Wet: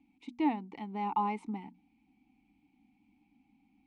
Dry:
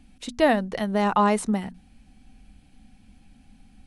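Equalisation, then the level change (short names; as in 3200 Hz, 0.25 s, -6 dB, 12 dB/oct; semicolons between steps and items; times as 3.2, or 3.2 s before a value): vowel filter u; bell 300 Hz -4 dB 0.76 oct; +2.0 dB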